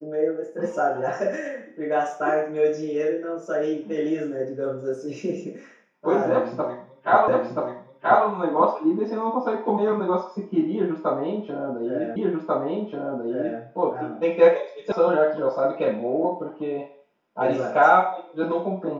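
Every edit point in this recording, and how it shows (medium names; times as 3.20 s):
7.28 s: repeat of the last 0.98 s
12.16 s: repeat of the last 1.44 s
14.92 s: sound stops dead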